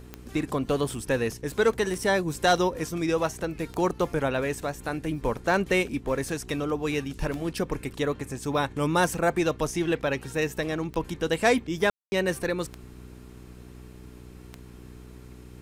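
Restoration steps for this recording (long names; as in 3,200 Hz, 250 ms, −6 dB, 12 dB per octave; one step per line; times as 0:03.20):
click removal
hum removal 61.6 Hz, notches 7
ambience match 0:11.90–0:12.12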